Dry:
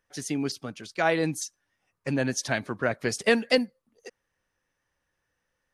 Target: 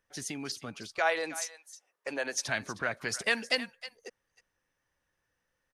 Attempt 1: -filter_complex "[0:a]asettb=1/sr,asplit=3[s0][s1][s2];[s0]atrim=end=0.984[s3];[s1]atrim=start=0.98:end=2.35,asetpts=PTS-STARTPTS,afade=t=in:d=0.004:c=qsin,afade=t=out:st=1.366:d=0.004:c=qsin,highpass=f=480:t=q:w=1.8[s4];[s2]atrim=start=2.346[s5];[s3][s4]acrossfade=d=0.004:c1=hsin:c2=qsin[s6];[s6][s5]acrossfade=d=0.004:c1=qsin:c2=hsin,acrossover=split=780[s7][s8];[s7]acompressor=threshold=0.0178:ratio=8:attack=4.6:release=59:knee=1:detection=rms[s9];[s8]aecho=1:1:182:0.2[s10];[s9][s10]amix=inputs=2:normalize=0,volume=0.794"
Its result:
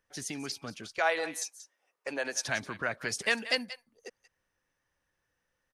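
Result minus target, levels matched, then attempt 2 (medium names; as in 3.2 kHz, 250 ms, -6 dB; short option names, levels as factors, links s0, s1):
echo 131 ms early
-filter_complex "[0:a]asettb=1/sr,asplit=3[s0][s1][s2];[s0]atrim=end=0.984[s3];[s1]atrim=start=0.98:end=2.35,asetpts=PTS-STARTPTS,afade=t=in:d=0.004:c=qsin,afade=t=out:st=1.366:d=0.004:c=qsin,highpass=f=480:t=q:w=1.8[s4];[s2]atrim=start=2.346[s5];[s3][s4]acrossfade=d=0.004:c1=hsin:c2=qsin[s6];[s6][s5]acrossfade=d=0.004:c1=qsin:c2=hsin,acrossover=split=780[s7][s8];[s7]acompressor=threshold=0.0178:ratio=8:attack=4.6:release=59:knee=1:detection=rms[s9];[s8]aecho=1:1:313:0.2[s10];[s9][s10]amix=inputs=2:normalize=0,volume=0.794"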